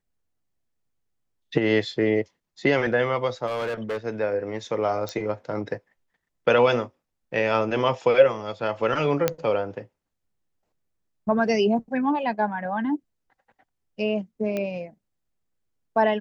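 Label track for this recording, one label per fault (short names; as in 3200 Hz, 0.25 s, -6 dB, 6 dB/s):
3.460000	3.980000	clipped -24.5 dBFS
5.090000	5.090000	pop -18 dBFS
9.280000	9.280000	pop -6 dBFS
14.570000	14.570000	pop -16 dBFS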